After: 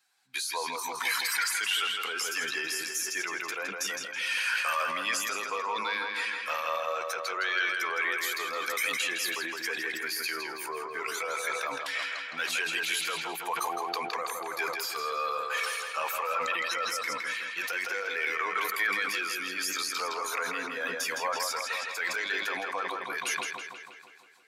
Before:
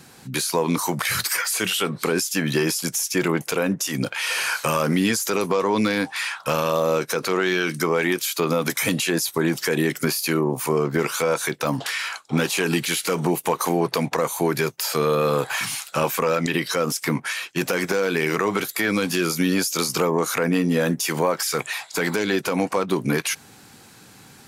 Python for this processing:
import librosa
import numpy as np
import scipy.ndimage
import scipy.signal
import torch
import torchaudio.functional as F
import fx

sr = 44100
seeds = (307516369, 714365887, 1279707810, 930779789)

p1 = fx.bin_expand(x, sr, power=1.5)
p2 = scipy.signal.sosfilt(scipy.signal.butter(2, 1200.0, 'highpass', fs=sr, output='sos'), p1)
p3 = fx.high_shelf(p2, sr, hz=5200.0, db=-8.5)
p4 = p3 + fx.echo_filtered(p3, sr, ms=163, feedback_pct=64, hz=4800.0, wet_db=-4, dry=0)
y = fx.sustainer(p4, sr, db_per_s=34.0)